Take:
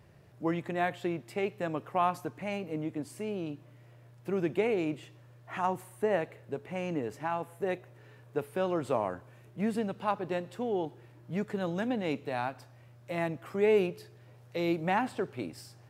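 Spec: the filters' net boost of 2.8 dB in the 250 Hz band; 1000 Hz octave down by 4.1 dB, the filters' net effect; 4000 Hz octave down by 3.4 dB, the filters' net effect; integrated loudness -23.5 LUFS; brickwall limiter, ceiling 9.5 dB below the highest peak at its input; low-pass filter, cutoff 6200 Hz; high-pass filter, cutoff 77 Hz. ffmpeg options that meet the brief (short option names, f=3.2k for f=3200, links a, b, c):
-af "highpass=77,lowpass=6.2k,equalizer=f=250:t=o:g=4.5,equalizer=f=1k:t=o:g=-6,equalizer=f=4k:t=o:g=-4,volume=12.5dB,alimiter=limit=-12.5dB:level=0:latency=1"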